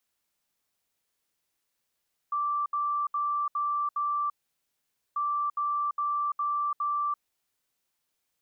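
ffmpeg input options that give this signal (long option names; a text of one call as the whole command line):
ffmpeg -f lavfi -i "aevalsrc='0.0531*sin(2*PI*1170*t)*clip(min(mod(mod(t,2.84),0.41),0.34-mod(mod(t,2.84),0.41))/0.005,0,1)*lt(mod(t,2.84),2.05)':duration=5.68:sample_rate=44100" out.wav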